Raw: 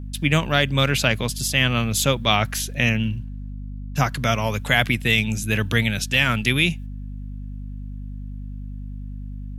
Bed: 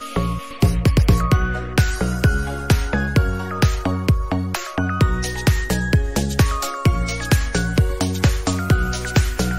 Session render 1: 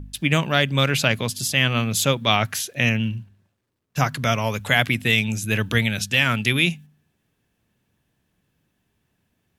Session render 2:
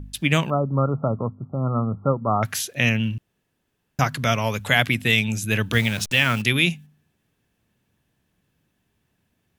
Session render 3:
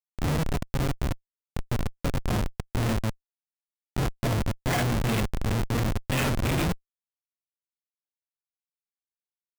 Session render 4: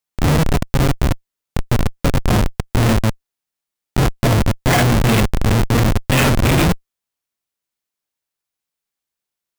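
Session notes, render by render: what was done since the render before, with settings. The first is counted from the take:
de-hum 50 Hz, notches 5
0.50–2.43 s: brick-wall FIR low-pass 1.4 kHz; 3.18–3.99 s: room tone; 5.73–6.42 s: send-on-delta sampling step -33 dBFS
phase randomisation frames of 200 ms; Schmitt trigger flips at -17 dBFS
trim +11.5 dB

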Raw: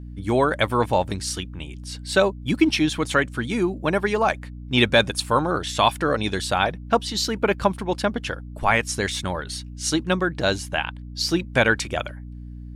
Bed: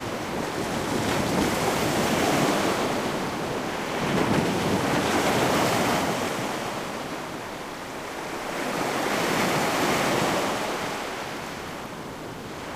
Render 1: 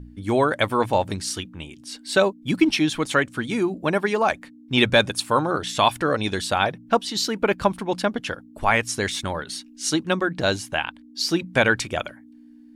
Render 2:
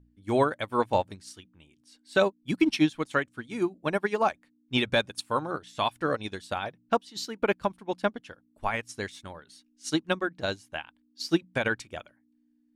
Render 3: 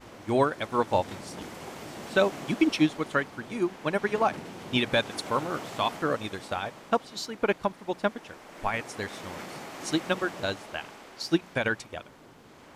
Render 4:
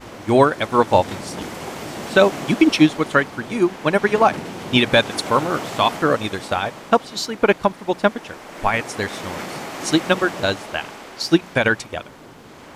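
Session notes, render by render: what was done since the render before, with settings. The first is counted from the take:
de-hum 60 Hz, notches 3
peak limiter -10 dBFS, peak gain reduction 5.5 dB; upward expansion 2.5:1, over -30 dBFS
add bed -17 dB
trim +10 dB; peak limiter -2 dBFS, peak gain reduction 2 dB

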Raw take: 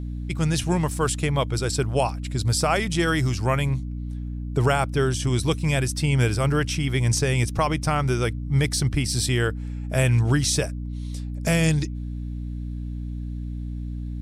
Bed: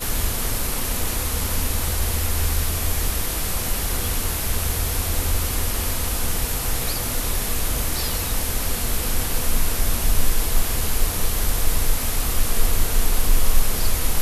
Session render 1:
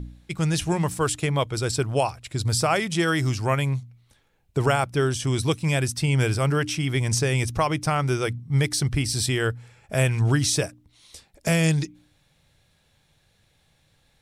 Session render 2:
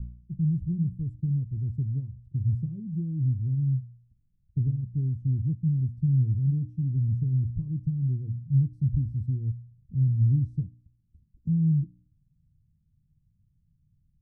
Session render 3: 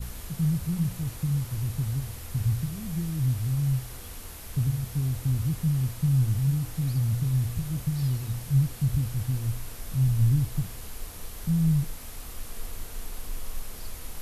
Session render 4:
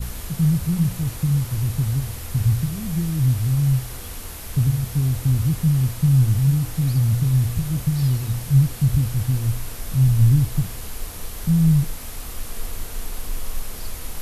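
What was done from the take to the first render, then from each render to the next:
de-hum 60 Hz, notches 5
inverse Chebyshev low-pass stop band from 650 Hz, stop band 60 dB
add bed -17.5 dB
trim +7 dB

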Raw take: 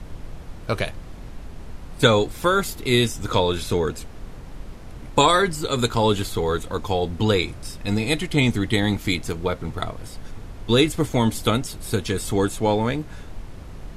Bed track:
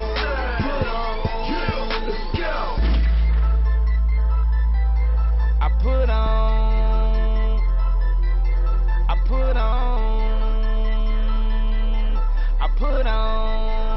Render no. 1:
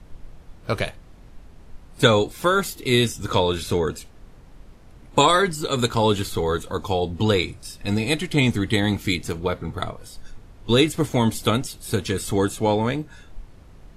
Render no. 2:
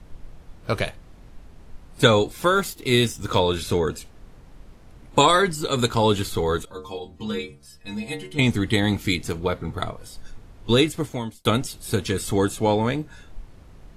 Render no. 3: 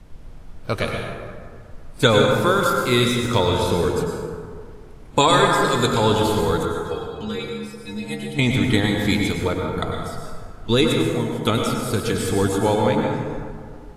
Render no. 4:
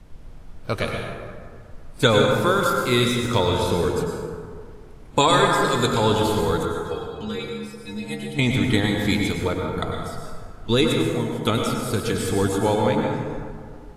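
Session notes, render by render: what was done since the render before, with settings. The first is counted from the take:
noise print and reduce 9 dB
2.56–3.39 s: companding laws mixed up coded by A; 6.65–8.39 s: inharmonic resonator 68 Hz, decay 0.47 s, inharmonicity 0.008; 10.72–11.45 s: fade out
plate-style reverb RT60 2 s, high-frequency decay 0.45×, pre-delay 85 ms, DRR 0.5 dB
trim -1.5 dB

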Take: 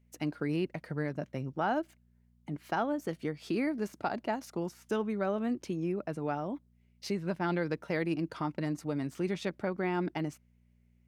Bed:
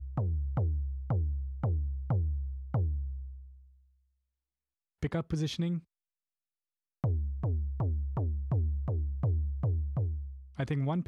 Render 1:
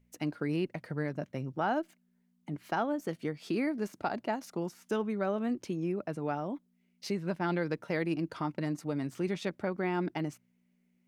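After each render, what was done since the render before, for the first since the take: de-hum 60 Hz, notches 2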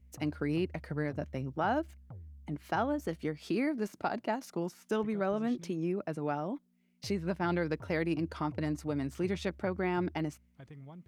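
add bed -18.5 dB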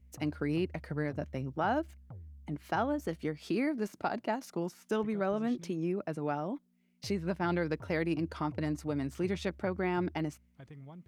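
no audible change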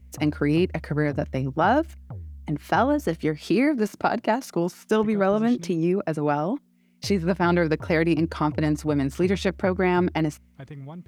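trim +10.5 dB

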